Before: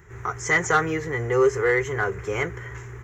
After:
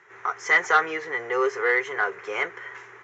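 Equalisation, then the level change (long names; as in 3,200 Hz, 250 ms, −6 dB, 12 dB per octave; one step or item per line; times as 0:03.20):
high-pass filter 610 Hz 12 dB per octave
low-pass filter 5,100 Hz 24 dB per octave
+2.0 dB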